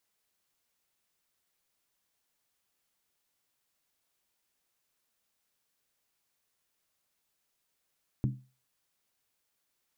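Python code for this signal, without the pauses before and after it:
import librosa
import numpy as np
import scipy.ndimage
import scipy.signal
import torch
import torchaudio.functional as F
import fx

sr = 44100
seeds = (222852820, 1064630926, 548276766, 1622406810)

y = fx.strike_skin(sr, length_s=0.63, level_db=-23, hz=129.0, decay_s=0.34, tilt_db=5.5, modes=5)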